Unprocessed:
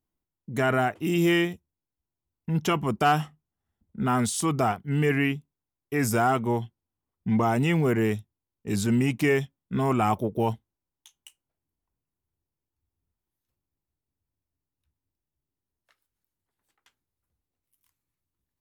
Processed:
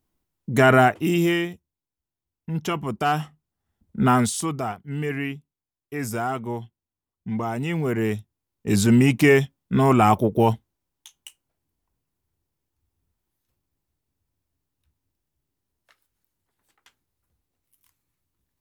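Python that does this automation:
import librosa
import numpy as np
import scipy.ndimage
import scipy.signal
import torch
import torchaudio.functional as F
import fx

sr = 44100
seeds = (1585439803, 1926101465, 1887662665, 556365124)

y = fx.gain(x, sr, db=fx.line((0.86, 8.5), (1.41, -1.5), (3.01, -1.5), (4.07, 7.5), (4.6, -4.0), (7.59, -4.0), (8.7, 7.0)))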